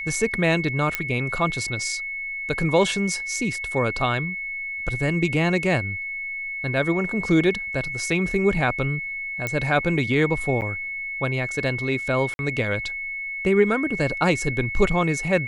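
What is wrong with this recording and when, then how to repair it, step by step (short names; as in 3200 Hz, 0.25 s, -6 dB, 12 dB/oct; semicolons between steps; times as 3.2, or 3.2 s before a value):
tone 2200 Hz -28 dBFS
0.95 pop -8 dBFS
9.47 pop -12 dBFS
10.61–10.62 gap 9 ms
12.34–12.39 gap 51 ms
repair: de-click; notch 2200 Hz, Q 30; interpolate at 10.61, 9 ms; interpolate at 12.34, 51 ms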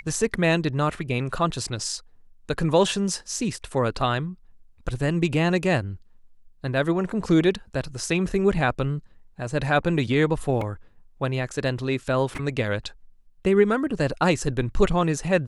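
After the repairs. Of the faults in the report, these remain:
none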